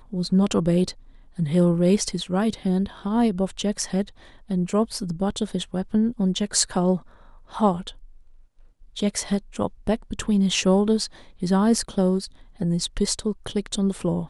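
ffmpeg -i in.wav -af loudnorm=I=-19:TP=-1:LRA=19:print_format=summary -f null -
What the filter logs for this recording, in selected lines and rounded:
Input Integrated:    -23.8 LUFS
Input True Peak:      -0.8 dBTP
Input LRA:             2.7 LU
Input Threshold:     -34.3 LUFS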